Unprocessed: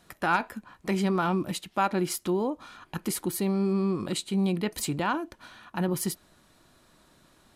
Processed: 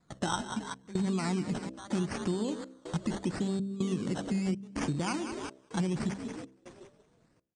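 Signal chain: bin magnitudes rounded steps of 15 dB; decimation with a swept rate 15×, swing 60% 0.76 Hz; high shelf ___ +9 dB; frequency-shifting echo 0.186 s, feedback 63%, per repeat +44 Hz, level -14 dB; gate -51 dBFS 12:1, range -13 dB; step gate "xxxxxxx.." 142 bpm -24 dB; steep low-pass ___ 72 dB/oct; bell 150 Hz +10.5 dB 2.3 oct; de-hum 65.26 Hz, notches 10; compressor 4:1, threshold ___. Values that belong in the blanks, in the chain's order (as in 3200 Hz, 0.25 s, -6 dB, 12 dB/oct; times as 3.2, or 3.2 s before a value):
5900 Hz, 9200 Hz, -30 dBFS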